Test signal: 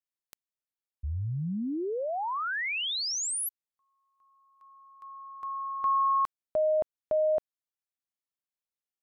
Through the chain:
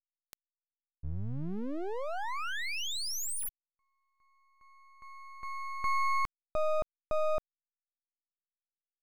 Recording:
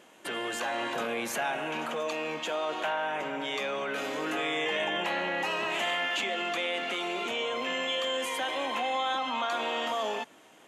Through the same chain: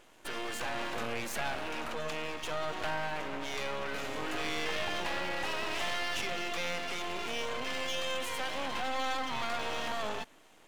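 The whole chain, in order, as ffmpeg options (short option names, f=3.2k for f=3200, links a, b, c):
-af "aeval=exprs='max(val(0),0)':c=same"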